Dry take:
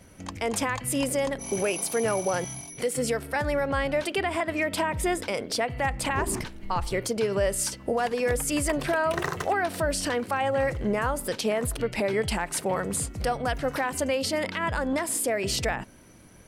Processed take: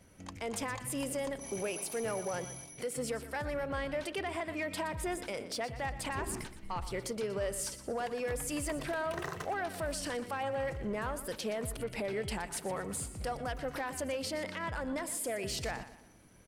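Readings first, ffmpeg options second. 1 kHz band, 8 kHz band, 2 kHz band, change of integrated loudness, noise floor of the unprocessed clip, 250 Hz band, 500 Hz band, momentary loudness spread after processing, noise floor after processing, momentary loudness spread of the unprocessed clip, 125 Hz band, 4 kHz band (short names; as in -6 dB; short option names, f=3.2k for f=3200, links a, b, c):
-9.5 dB, -9.0 dB, -10.0 dB, -9.5 dB, -46 dBFS, -9.5 dB, -9.5 dB, 3 LU, -52 dBFS, 4 LU, -9.0 dB, -9.0 dB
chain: -filter_complex "[0:a]asoftclip=type=tanh:threshold=-18.5dB,asplit=2[a][b];[b]aecho=0:1:120|240|360|480:0.211|0.0803|0.0305|0.0116[c];[a][c]amix=inputs=2:normalize=0,volume=-8.5dB"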